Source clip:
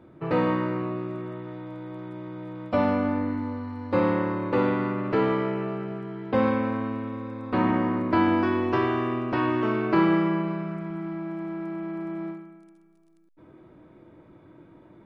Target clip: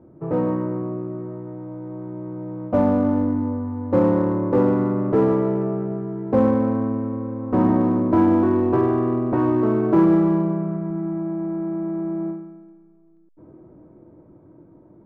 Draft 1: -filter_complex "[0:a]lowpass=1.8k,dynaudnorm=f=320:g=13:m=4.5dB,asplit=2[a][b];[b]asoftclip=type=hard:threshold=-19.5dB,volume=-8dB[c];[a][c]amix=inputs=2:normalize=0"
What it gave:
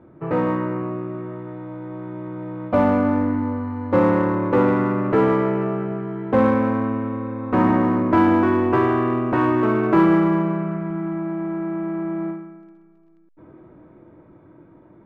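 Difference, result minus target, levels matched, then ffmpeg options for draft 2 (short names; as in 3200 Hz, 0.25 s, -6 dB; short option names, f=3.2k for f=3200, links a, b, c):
2000 Hz band +10.0 dB
-filter_complex "[0:a]lowpass=740,dynaudnorm=f=320:g=13:m=4.5dB,asplit=2[a][b];[b]asoftclip=type=hard:threshold=-19.5dB,volume=-8dB[c];[a][c]amix=inputs=2:normalize=0"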